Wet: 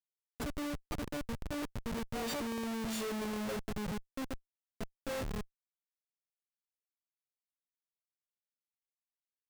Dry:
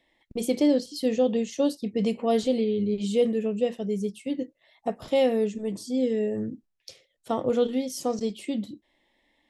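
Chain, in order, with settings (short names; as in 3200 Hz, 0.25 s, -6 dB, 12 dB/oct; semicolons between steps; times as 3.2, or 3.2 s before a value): frequency quantiser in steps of 4 st; Doppler pass-by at 2.99, 17 m/s, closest 6.8 m; Schmitt trigger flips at -34 dBFS; gain -2.5 dB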